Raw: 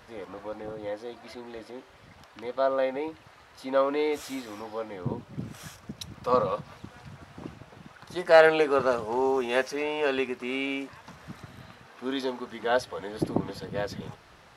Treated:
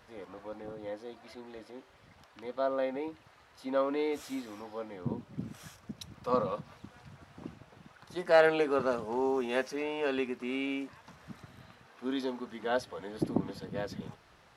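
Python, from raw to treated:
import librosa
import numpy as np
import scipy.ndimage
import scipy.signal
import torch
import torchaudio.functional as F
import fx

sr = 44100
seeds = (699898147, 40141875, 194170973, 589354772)

y = fx.dynamic_eq(x, sr, hz=230.0, q=1.3, threshold_db=-44.0, ratio=4.0, max_db=6)
y = F.gain(torch.from_numpy(y), -6.5).numpy()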